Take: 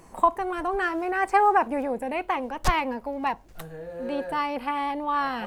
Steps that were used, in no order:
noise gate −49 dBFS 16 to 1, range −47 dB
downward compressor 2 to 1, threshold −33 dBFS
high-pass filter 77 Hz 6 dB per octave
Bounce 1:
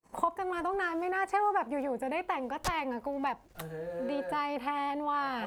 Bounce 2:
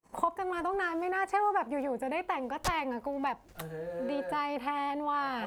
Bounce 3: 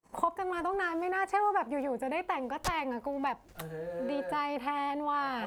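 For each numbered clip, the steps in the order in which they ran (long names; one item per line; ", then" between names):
downward compressor, then noise gate, then high-pass filter
noise gate, then high-pass filter, then downward compressor
noise gate, then downward compressor, then high-pass filter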